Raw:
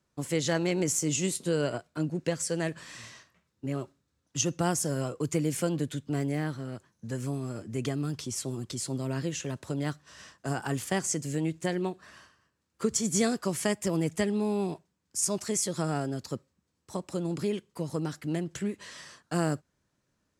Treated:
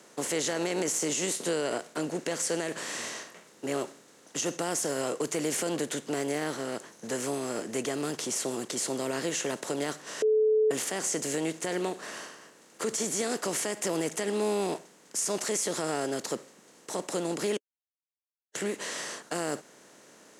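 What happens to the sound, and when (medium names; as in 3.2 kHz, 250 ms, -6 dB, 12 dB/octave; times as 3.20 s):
10.22–10.71 s: bleep 433 Hz -17 dBFS
17.57–18.55 s: mute
whole clip: spectral levelling over time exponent 0.6; high-pass 300 Hz 12 dB/octave; peak limiter -20 dBFS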